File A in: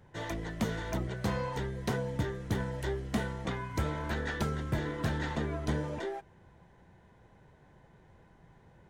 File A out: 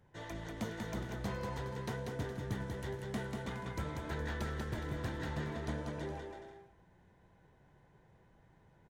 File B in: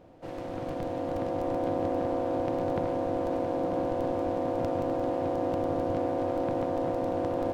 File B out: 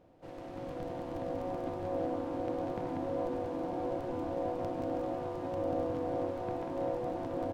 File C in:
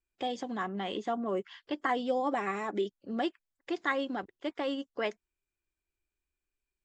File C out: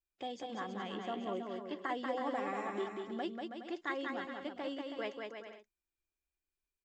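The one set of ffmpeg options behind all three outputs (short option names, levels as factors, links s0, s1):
-af "aecho=1:1:190|323|416.1|481.3|526.9:0.631|0.398|0.251|0.158|0.1,volume=0.398"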